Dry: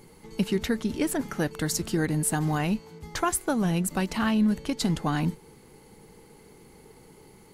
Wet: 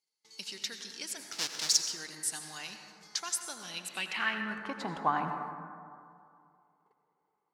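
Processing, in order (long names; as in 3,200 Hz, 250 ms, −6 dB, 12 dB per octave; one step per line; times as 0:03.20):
0:01.32–0:01.77: each half-wave held at its own peak
noise gate −47 dBFS, range −26 dB
band-pass filter sweep 5,200 Hz → 990 Hz, 0:03.60–0:04.80
convolution reverb RT60 2.4 s, pre-delay 73 ms, DRR 5.5 dB
level +5.5 dB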